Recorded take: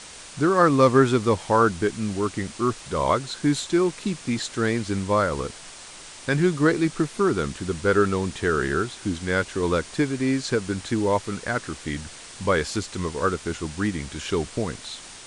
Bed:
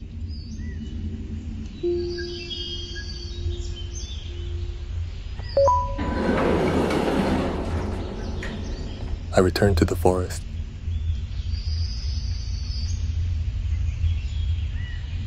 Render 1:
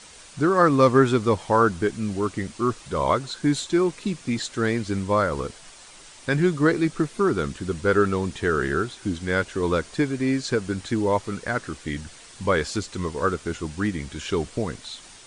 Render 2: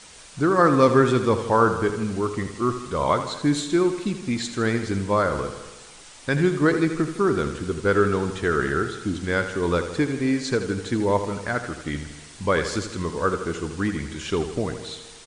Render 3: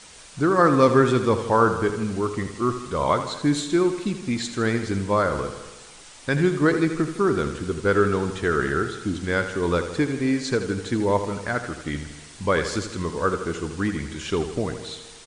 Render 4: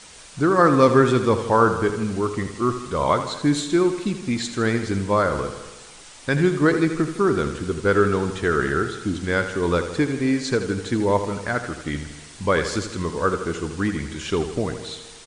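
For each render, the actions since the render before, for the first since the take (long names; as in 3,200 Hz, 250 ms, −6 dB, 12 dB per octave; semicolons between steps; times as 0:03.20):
broadband denoise 6 dB, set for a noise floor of −42 dBFS
repeating echo 80 ms, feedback 59%, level −10.5 dB; spring reverb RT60 1.5 s, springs 41 ms, chirp 50 ms, DRR 17 dB
no processing that can be heard
level +1.5 dB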